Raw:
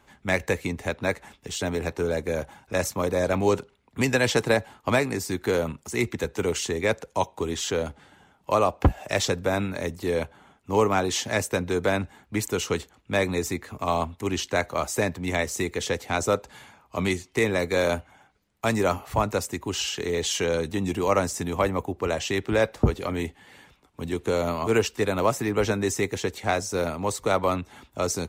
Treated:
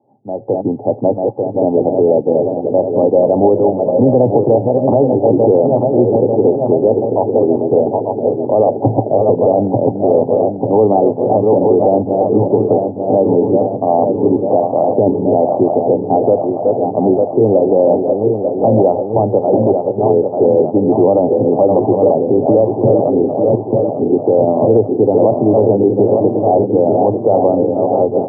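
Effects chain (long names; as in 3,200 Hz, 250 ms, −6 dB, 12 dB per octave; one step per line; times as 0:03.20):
feedback delay that plays each chunk backwards 446 ms, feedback 78%, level −6.5 dB
Chebyshev band-pass filter 110–820 Hz, order 5
parametric band 170 Hz −10.5 dB 0.48 octaves
brickwall limiter −19 dBFS, peak gain reduction 8.5 dB
automatic gain control gain up to 12.5 dB
level +4.5 dB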